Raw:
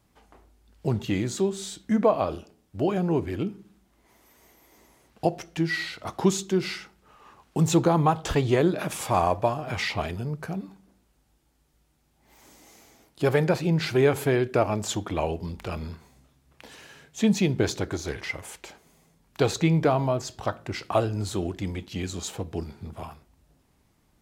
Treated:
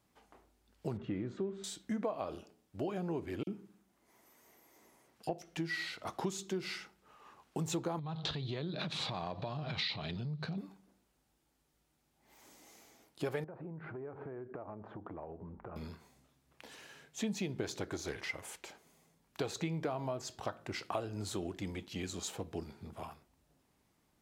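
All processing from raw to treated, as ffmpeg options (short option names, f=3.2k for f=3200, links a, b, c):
-filter_complex "[0:a]asettb=1/sr,asplit=3[a][b][c];[a]atrim=end=0.974[d];[b]atrim=start=0.97:end=1.64,asetpts=PTS-STARTPTS,afade=t=in:d=0.004:c=qsin,afade=t=out:st=0.666:d=0.004:c=qsin,aeval=exprs='val(0)+0.5*0.00891*sgn(val(0))':c=same,lowpass=1.4k,equalizer=f=830:t=o:w=0.61:g=-9[e];[c]atrim=start=1.636[f];[d][e]acrossfade=d=0.004:c1=hsin:c2=qsin[g];[g][f]acrossfade=d=0.004:c1=qsin:c2=hsin,asettb=1/sr,asplit=3[h][i][j];[h]atrim=end=3.434[k];[i]atrim=start=3.43:end=5.42,asetpts=PTS-STARTPTS,afade=t=in:d=0.004:c=qsin,afade=t=out:st=1.986:d=0.004:c=qsin,highpass=72,acrossover=split=3500[l][m];[l]adelay=40[n];[n][m]amix=inputs=2:normalize=0,atrim=end_sample=87759[o];[j]atrim=start=5.416[p];[k][o]acrossfade=d=0.004:c1=hsin:c2=qsin[q];[q][p]acrossfade=d=0.004:c1=qsin:c2=hsin,asettb=1/sr,asplit=3[r][s][t];[r]atrim=end=7.994[u];[s]atrim=start=7.99:end=10.58,asetpts=PTS-STARTPTS,afade=t=in:d=0.004:c=qsin,afade=t=out:st=2.586:d=0.004:c=qsin,equalizer=f=150:t=o:w=0.93:g=14.5,acompressor=threshold=-27dB:ratio=5:attack=3.2:release=140:knee=1:detection=peak,lowpass=f=4k:t=q:w=8.7[v];[t]atrim=start=10.576[w];[u][v]acrossfade=d=0.004:c1=hsin:c2=qsin[x];[x][w]acrossfade=d=0.004:c1=qsin:c2=hsin,asettb=1/sr,asplit=3[y][z][aa];[y]atrim=end=13.444[ab];[z]atrim=start=13.44:end=15.76,asetpts=PTS-STARTPTS,afade=t=in:d=0.004:c=qsin,afade=t=out:st=2.316:d=0.004:c=qsin,lowpass=f=1.4k:w=0.5412,lowpass=f=1.4k:w=1.3066,acompressor=threshold=-33dB:ratio=16:attack=3.2:release=140:knee=1:detection=peak[ac];[aa]atrim=start=15.756[ad];[ab][ac]acrossfade=d=0.004:c1=hsin:c2=qsin[ae];[ae][ad]acrossfade=d=0.004:c1=qsin:c2=hsin,lowshelf=f=100:g=-11,acompressor=threshold=-28dB:ratio=4,volume=-6dB"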